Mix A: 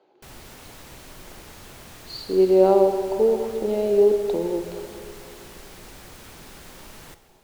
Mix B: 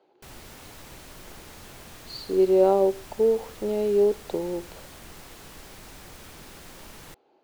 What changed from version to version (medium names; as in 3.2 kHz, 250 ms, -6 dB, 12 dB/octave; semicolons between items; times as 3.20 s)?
reverb: off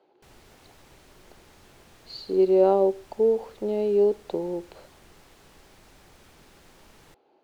background -8.5 dB; master: add treble shelf 10 kHz -8 dB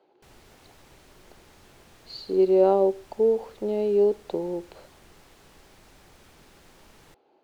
no change